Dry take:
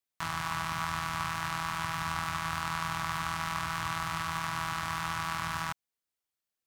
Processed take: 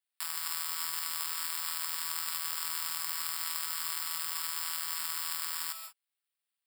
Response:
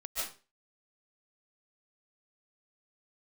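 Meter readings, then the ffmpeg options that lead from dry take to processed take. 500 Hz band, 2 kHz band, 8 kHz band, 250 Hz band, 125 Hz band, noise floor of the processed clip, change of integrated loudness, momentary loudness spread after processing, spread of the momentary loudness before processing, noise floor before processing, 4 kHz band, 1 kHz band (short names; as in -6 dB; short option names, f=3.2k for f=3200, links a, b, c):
under -15 dB, -7.5 dB, +8.0 dB, under -25 dB, under -25 dB, under -85 dBFS, +0.5 dB, 1 LU, 1 LU, under -85 dBFS, +2.5 dB, -11.5 dB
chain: -filter_complex "[0:a]acrusher=samples=7:mix=1:aa=0.000001,aderivative,asplit=2[a][b];[1:a]atrim=start_sample=2205,afade=t=out:st=0.25:d=0.01,atrim=end_sample=11466[c];[b][c]afir=irnorm=-1:irlink=0,volume=-7.5dB[d];[a][d]amix=inputs=2:normalize=0,volume=3dB"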